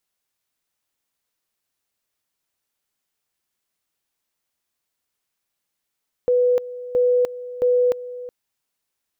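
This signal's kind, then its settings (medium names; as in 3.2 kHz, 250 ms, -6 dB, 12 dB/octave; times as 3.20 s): two-level tone 494 Hz -14 dBFS, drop 16 dB, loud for 0.30 s, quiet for 0.37 s, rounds 3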